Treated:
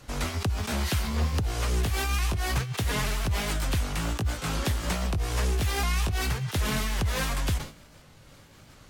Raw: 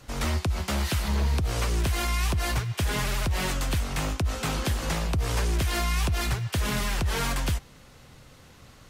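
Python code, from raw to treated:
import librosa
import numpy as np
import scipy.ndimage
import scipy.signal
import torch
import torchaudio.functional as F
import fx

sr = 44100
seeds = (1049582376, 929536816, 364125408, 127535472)

y = fx.pitch_ramps(x, sr, semitones=2.5, every_ms=729)
y = fx.sustainer(y, sr, db_per_s=140.0)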